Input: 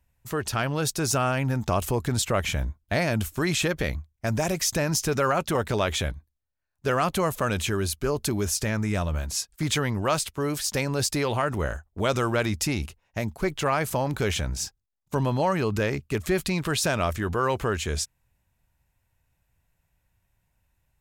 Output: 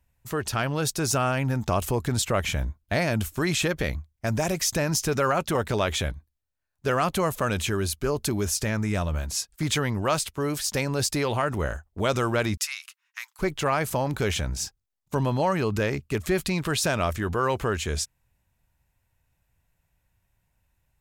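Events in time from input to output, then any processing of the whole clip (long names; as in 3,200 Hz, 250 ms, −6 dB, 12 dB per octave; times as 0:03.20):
0:12.57–0:13.39: Butterworth high-pass 1,100 Hz 48 dB per octave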